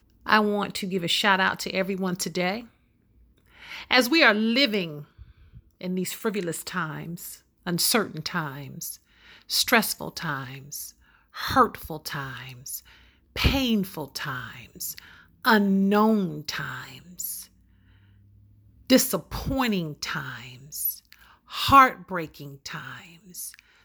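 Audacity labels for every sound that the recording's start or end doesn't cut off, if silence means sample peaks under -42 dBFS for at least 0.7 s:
3.580000	17.450000	sound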